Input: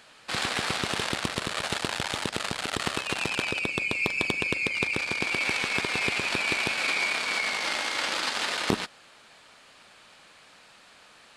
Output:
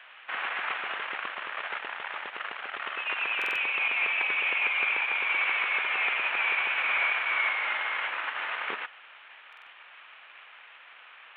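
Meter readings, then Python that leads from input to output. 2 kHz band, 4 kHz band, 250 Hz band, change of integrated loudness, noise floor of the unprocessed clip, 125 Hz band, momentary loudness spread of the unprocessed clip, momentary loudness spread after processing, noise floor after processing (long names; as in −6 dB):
+1.5 dB, −6.5 dB, below −15 dB, −0.5 dB, −54 dBFS, below −30 dB, 5 LU, 11 LU, −51 dBFS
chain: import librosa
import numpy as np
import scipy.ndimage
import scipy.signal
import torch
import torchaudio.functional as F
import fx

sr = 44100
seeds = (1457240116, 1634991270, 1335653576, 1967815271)

y = fx.cvsd(x, sr, bps=16000)
y = scipy.signal.sosfilt(scipy.signal.butter(2, 1100.0, 'highpass', fs=sr, output='sos'), y)
y = fx.buffer_glitch(y, sr, at_s=(3.37, 9.48), block=2048, repeats=3)
y = y * librosa.db_to_amplitude(5.5)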